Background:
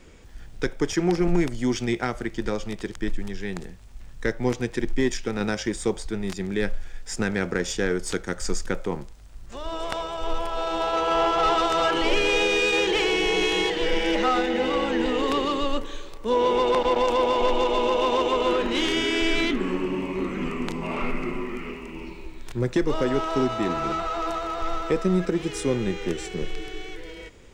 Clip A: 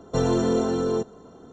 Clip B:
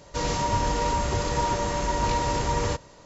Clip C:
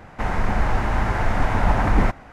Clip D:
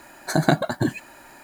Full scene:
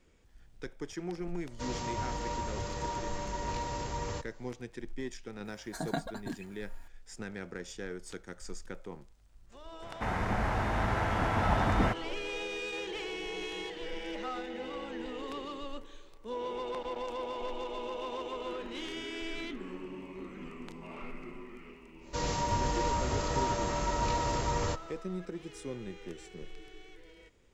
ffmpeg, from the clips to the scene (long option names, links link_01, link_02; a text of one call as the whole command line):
ffmpeg -i bed.wav -i cue0.wav -i cue1.wav -i cue2.wav -i cue3.wav -filter_complex "[2:a]asplit=2[link_01][link_02];[0:a]volume=-16dB[link_03];[4:a]aecho=1:1:4.3:0.54[link_04];[3:a]highpass=58[link_05];[link_01]atrim=end=3.05,asetpts=PTS-STARTPTS,volume=-11dB,afade=type=in:duration=0.004:curve=hsin,afade=type=out:start_time=3.046:duration=0.004:curve=hsin,adelay=1450[link_06];[link_04]atrim=end=1.43,asetpts=PTS-STARTPTS,volume=-17dB,afade=type=in:duration=0.004:curve=hsin,afade=type=out:start_time=1.426:duration=0.004:curve=hsin,adelay=240345S[link_07];[link_05]atrim=end=2.32,asetpts=PTS-STARTPTS,volume=-7dB,afade=type=in:duration=0.004:curve=hsin,afade=type=out:start_time=2.316:duration=0.004:curve=hsin,adelay=9820[link_08];[link_02]atrim=end=3.05,asetpts=PTS-STARTPTS,volume=-6dB,afade=type=in:duration=0.1,afade=type=out:start_time=2.95:duration=0.1,adelay=21990[link_09];[link_03][link_06][link_07][link_08][link_09]amix=inputs=5:normalize=0" out.wav